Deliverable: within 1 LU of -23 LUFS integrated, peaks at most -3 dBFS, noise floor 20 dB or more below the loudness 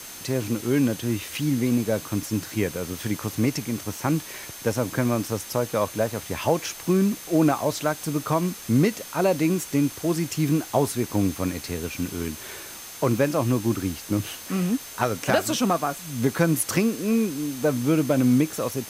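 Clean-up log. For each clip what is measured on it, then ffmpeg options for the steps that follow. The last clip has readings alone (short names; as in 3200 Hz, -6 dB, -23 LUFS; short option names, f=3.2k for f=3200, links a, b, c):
steady tone 6300 Hz; tone level -46 dBFS; noise floor -40 dBFS; noise floor target -45 dBFS; loudness -25.0 LUFS; peak -7.0 dBFS; loudness target -23.0 LUFS
-> -af "bandreject=f=6.3k:w=30"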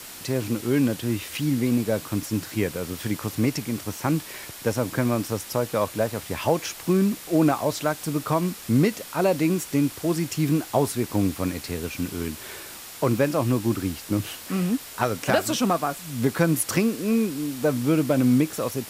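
steady tone none; noise floor -41 dBFS; noise floor target -45 dBFS
-> -af "afftdn=nr=6:nf=-41"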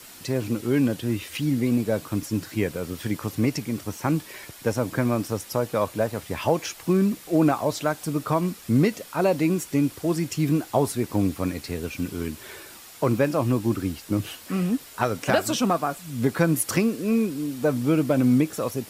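noise floor -45 dBFS; loudness -25.0 LUFS; peak -7.0 dBFS; loudness target -23.0 LUFS
-> -af "volume=2dB"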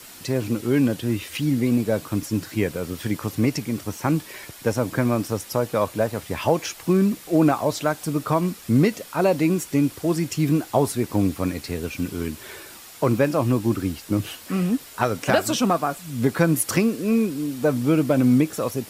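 loudness -23.0 LUFS; peak -5.0 dBFS; noise floor -43 dBFS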